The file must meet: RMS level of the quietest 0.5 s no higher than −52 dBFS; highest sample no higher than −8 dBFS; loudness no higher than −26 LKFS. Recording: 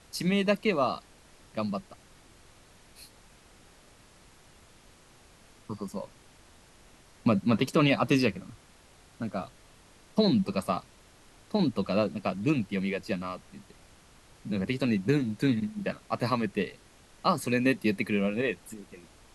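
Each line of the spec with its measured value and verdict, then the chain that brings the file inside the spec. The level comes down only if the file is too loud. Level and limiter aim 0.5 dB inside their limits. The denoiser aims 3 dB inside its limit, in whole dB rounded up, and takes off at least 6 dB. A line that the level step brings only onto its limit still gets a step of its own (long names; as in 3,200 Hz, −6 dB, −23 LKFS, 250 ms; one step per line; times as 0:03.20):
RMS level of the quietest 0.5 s −57 dBFS: in spec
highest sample −11.0 dBFS: in spec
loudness −29.0 LKFS: in spec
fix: no processing needed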